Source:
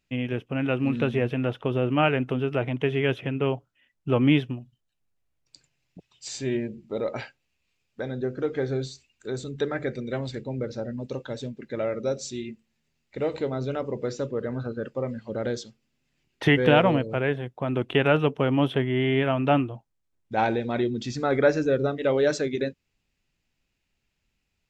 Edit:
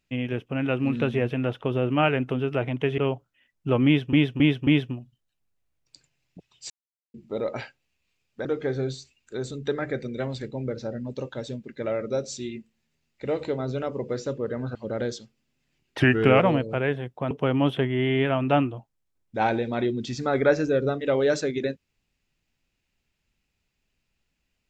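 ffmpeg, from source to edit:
-filter_complex "[0:a]asplit=12[a][b][c][d][e][f][g][h][i][j][k][l];[a]atrim=end=2.982[m];[b]atrim=start=3.388:end=4.542[n];[c]atrim=start=4.268:end=4.542[o];[d]atrim=start=4.268:end=4.542[p];[e]atrim=start=4.268:end=6.3,asetpts=PTS-STARTPTS,afade=t=out:st=2.028:d=0.004:c=hsin[q];[f]atrim=start=6.3:end=6.74,asetpts=PTS-STARTPTS,volume=0[r];[g]atrim=start=6.74:end=8.052,asetpts=PTS-STARTPTS,afade=t=in:d=0.004:c=hsin[s];[h]atrim=start=8.378:end=14.682[t];[i]atrim=start=15.198:end=16.454[u];[j]atrim=start=16.45:end=16.8,asetpts=PTS-STARTPTS,asetrate=38808,aresample=44100[v];[k]atrim=start=16.796:end=17.712[w];[l]atrim=start=18.278[x];[m][n]acrossfade=d=0.004:c1=hsin:c2=hsin[y];[y][o]acrossfade=d=0.004:c1=hsin:c2=hsin[z];[z][p]acrossfade=d=0.004:c1=hsin:c2=hsin[aa];[q][r][s]concat=n=3:v=0:a=1[ab];[aa][ab]acrossfade=d=0.004:c1=hsin:c2=hsin[ac];[ac][t]acrossfade=d=0.004:c1=hsin:c2=hsin[ad];[ad][u]acrossfade=d=0.004:c1=hsin:c2=hsin[ae];[ae][v]acrossfade=d=0.004:c1=hsin:c2=hsin[af];[af][w]acrossfade=d=0.004:c1=hsin:c2=hsin[ag];[ag][x]acrossfade=d=0.004:c1=hsin:c2=hsin"

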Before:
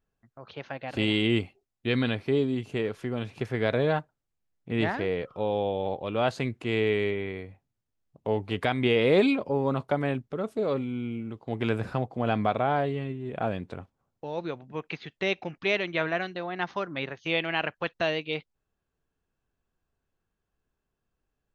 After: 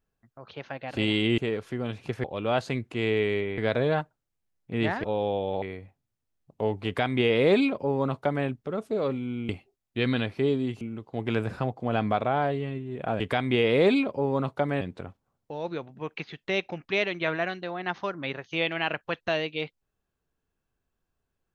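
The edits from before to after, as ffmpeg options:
-filter_complex "[0:a]asplit=10[a][b][c][d][e][f][g][h][i][j];[a]atrim=end=1.382[k];[b]atrim=start=2.698:end=3.562[l];[c]atrim=start=5.938:end=7.282[m];[d]atrim=start=3.558:end=5.022[n];[e]atrim=start=5.358:end=5.942[o];[f]atrim=start=7.278:end=11.152[p];[g]atrim=start=1.378:end=2.702[q];[h]atrim=start=11.148:end=13.542[r];[i]atrim=start=8.518:end=10.132[s];[j]atrim=start=13.538[t];[k][l]acrossfade=d=0.004:c1=hsin:c2=hsin[u];[u][m]acrossfade=d=0.004:c1=hsin:c2=hsin[v];[v][n]acrossfade=d=0.004:c1=hsin:c2=hsin[w];[w][o]acrossfade=d=0.004:c1=hsin:c2=hsin[x];[x][p]acrossfade=d=0.004:c1=hsin:c2=hsin[y];[y][q]acrossfade=d=0.004:c1=hsin:c2=hsin[z];[z][r]acrossfade=d=0.004:c1=hsin:c2=hsin[aa];[aa][s]acrossfade=d=0.004:c1=hsin:c2=hsin[ab];[ab][t]acrossfade=d=0.004:c1=hsin:c2=hsin"

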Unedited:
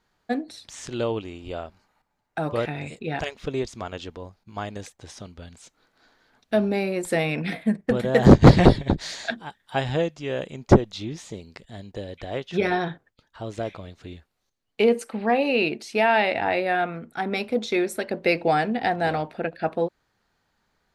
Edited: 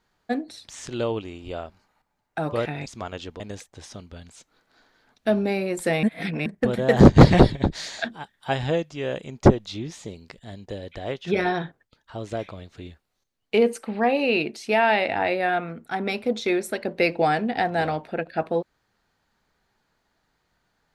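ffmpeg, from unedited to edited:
-filter_complex "[0:a]asplit=5[a][b][c][d][e];[a]atrim=end=2.862[f];[b]atrim=start=3.658:end=4.202[g];[c]atrim=start=4.658:end=7.292[h];[d]atrim=start=7.288:end=7.722,asetpts=PTS-STARTPTS,areverse[i];[e]atrim=start=7.718[j];[f][g]acrossfade=d=0.004:c1=hsin:c2=hsin[k];[k][h]acrossfade=d=0.004:c1=hsin:c2=hsin[l];[l][i]acrossfade=d=0.004:c1=hsin:c2=hsin[m];[m][j]acrossfade=d=0.004:c1=hsin:c2=hsin"

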